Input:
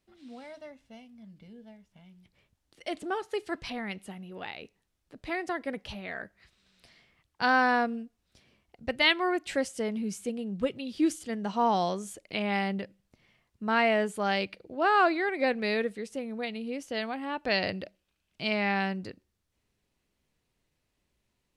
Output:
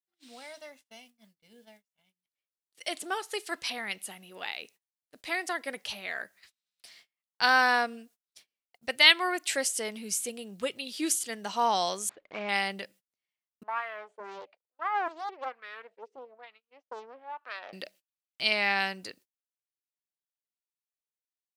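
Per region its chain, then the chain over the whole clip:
0:12.09–0:12.49: running median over 15 samples + low-pass filter 3,200 Hz 24 dB per octave
0:13.63–0:17.73: band-pass filter 240–5,000 Hz + LFO wah 1.1 Hz 410–1,300 Hz, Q 5 + highs frequency-modulated by the lows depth 0.82 ms
whole clip: RIAA equalisation recording; noise gate −56 dBFS, range −30 dB; low-shelf EQ 420 Hz −5 dB; level +1.5 dB

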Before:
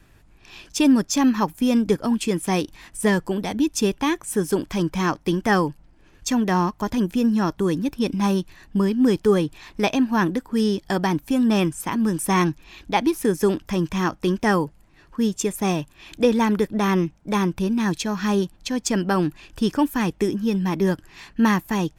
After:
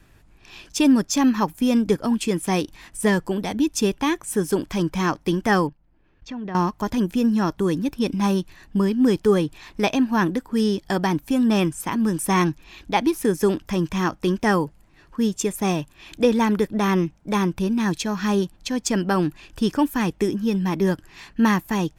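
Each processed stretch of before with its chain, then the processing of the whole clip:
0:05.67–0:06.55: output level in coarse steps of 15 dB + high-frequency loss of the air 250 metres
whole clip: no processing

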